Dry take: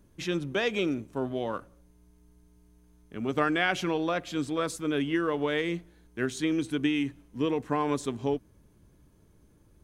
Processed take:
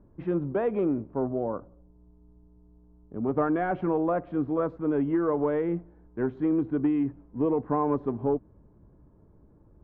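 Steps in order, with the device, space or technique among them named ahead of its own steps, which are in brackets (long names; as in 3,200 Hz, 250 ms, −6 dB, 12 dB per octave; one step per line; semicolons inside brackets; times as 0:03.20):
0:01.27–0:03.24: parametric band 2,100 Hz −10.5 dB 1.7 octaves
overdriven synthesiser ladder filter (soft clipping −19.5 dBFS, distortion −19 dB; transistor ladder low-pass 1,300 Hz, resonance 20%)
level +8.5 dB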